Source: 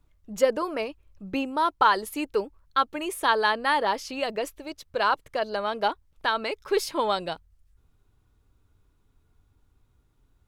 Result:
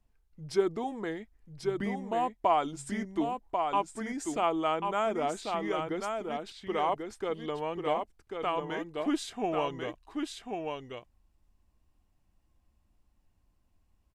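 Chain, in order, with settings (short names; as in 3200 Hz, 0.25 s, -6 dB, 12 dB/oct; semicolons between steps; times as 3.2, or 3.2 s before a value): echo 0.808 s -5 dB; dynamic EQ 3700 Hz, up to -4 dB, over -38 dBFS, Q 1.2; speed mistake 45 rpm record played at 33 rpm; gain -6 dB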